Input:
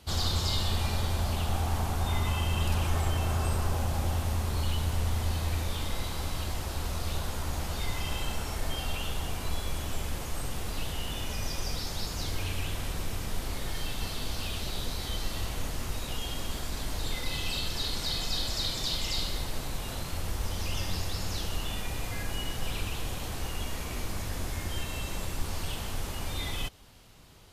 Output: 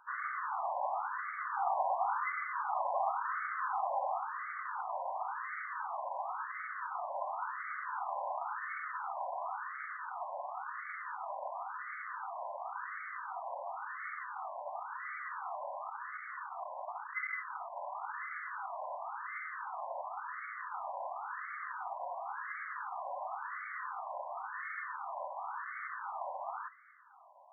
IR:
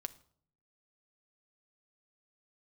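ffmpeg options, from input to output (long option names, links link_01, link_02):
-filter_complex "[0:a]asettb=1/sr,asplit=3[link_01][link_02][link_03];[link_01]atrim=end=15.824[link_04];[link_02]atrim=start=15.82:end=17.8,asetpts=PTS-STARTPTS,afade=type=in:duration=0.004:curve=qsin,afade=type=out:start_time=1.976:duration=0.004:curve=qsin,asoftclip=type=hard:threshold=-28.5dB[link_05];[link_03]atrim=start=17.796[link_06];[link_04][link_05]acrossfade=duration=0.004:curve1=hsin:curve2=qsin[link_07];[link_07][link_06]acrossfade=duration=0.004:curve1=qsin:curve2=hsin[link_08];[1:a]atrim=start_sample=2205,asetrate=57330,aresample=44100[link_09];[link_08][link_09]afir=irnorm=-1:irlink=0,afftfilt=real='re*between(b*sr/1024,760*pow(1600/760,0.5+0.5*sin(2*PI*0.94*pts/sr))/1.41,760*pow(1600/760,0.5+0.5*sin(2*PI*0.94*pts/sr))*1.41)':imag='im*between(b*sr/1024,760*pow(1600/760,0.5+0.5*sin(2*PI*0.94*pts/sr))/1.41,760*pow(1600/760,0.5+0.5*sin(2*PI*0.94*pts/sr))*1.41)':win_size=1024:overlap=0.75,volume=11.5dB"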